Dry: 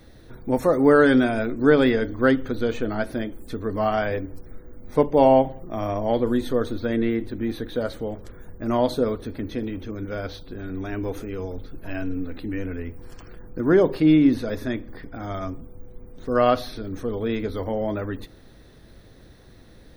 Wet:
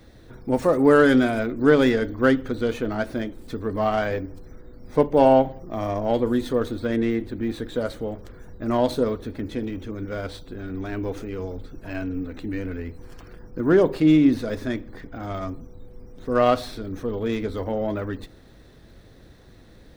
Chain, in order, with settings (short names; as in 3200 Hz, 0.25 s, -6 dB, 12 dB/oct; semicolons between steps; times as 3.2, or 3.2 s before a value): dynamic EQ 8600 Hz, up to +5 dB, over -50 dBFS, Q 0.99; running maximum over 3 samples